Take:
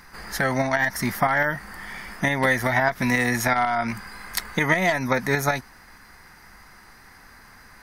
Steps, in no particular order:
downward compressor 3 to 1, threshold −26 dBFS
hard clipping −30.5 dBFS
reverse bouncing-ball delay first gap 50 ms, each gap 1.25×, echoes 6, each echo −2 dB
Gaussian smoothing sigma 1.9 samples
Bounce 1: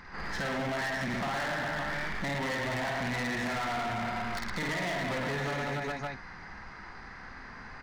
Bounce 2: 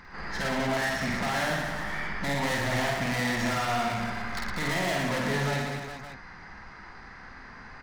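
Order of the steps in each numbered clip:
reverse bouncing-ball delay, then downward compressor, then Gaussian smoothing, then hard clipping
Gaussian smoothing, then hard clipping, then downward compressor, then reverse bouncing-ball delay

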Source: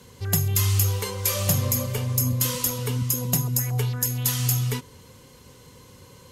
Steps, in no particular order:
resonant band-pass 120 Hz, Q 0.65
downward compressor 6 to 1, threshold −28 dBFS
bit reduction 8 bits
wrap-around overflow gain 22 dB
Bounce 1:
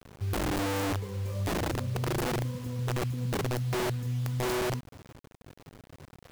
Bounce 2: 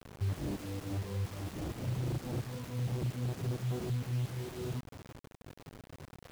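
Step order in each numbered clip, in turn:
resonant band-pass, then wrap-around overflow, then downward compressor, then bit reduction
wrap-around overflow, then downward compressor, then resonant band-pass, then bit reduction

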